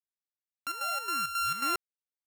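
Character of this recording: a buzz of ramps at a fixed pitch in blocks of 32 samples; chopped level 3.7 Hz, depth 60%, duty 65%; a quantiser's noise floor 12-bit, dither none

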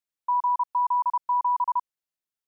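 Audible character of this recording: noise floor -92 dBFS; spectral tilt +5.5 dB/oct

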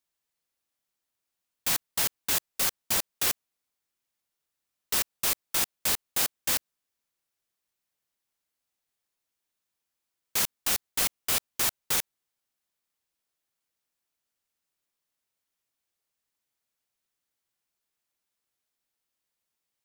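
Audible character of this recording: noise floor -85 dBFS; spectral tilt 0.0 dB/oct

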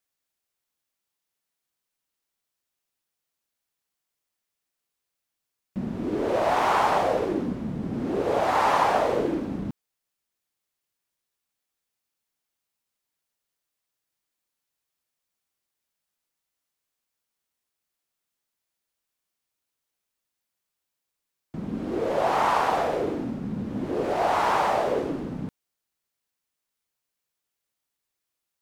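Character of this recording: noise floor -84 dBFS; spectral tilt -4.0 dB/oct

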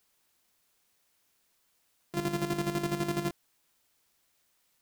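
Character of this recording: a buzz of ramps at a fixed pitch in blocks of 128 samples; chopped level 12 Hz, depth 60%, duty 40%; a quantiser's noise floor 12-bit, dither triangular

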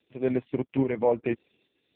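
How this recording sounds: tremolo saw up 1.2 Hz, depth 55%; AMR-NB

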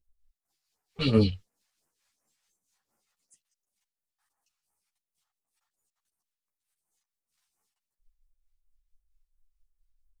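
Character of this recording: phasing stages 2, 2.8 Hz, lowest notch 270–3800 Hz; tremolo triangle 4.5 Hz, depth 50%; a shimmering, thickened sound

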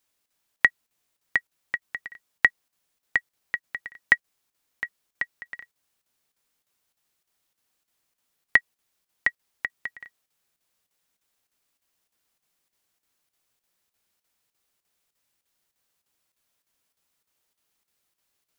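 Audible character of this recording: chopped level 3.3 Hz, depth 60%, duty 85%

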